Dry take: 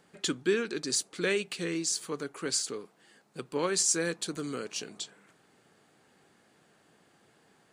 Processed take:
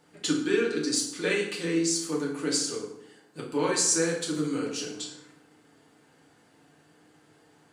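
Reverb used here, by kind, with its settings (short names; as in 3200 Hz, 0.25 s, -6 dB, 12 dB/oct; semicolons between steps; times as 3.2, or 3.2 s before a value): FDN reverb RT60 0.78 s, low-frequency decay 1.25×, high-frequency decay 0.7×, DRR -3.5 dB; gain -2 dB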